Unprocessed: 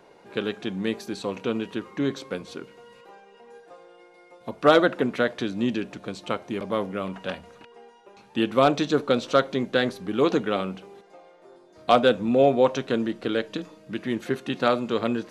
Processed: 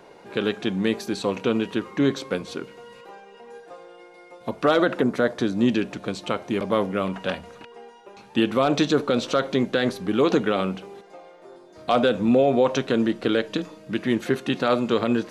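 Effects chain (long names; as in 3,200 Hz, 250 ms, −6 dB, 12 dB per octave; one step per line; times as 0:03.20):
0:05.01–0:05.66: parametric band 2,700 Hz −14 dB → −5 dB 0.95 octaves
brickwall limiter −14.5 dBFS, peak gain reduction 9 dB
level +5 dB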